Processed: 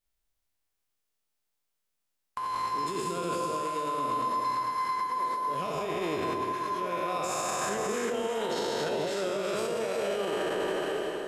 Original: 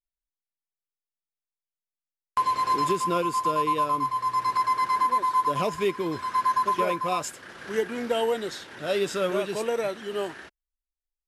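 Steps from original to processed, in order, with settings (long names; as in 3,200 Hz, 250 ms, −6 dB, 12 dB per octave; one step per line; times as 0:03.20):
peak hold with a decay on every bin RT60 2.68 s
compressor whose output falls as the input rises −30 dBFS, ratio −1
delay that swaps between a low-pass and a high-pass 178 ms, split 950 Hz, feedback 51%, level −3 dB
brickwall limiter −22 dBFS, peak gain reduction 10 dB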